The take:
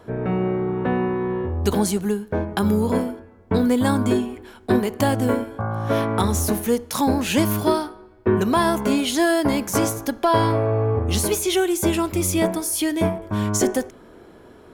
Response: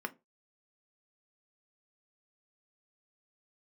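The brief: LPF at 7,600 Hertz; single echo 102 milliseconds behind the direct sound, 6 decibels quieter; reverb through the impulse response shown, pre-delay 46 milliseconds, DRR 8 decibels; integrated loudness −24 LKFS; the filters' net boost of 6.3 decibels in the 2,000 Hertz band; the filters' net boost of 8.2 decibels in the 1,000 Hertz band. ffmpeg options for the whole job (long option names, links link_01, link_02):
-filter_complex "[0:a]lowpass=7600,equalizer=frequency=1000:width_type=o:gain=8.5,equalizer=frequency=2000:width_type=o:gain=5,aecho=1:1:102:0.501,asplit=2[link_01][link_02];[1:a]atrim=start_sample=2205,adelay=46[link_03];[link_02][link_03]afir=irnorm=-1:irlink=0,volume=-10.5dB[link_04];[link_01][link_04]amix=inputs=2:normalize=0,volume=-6.5dB"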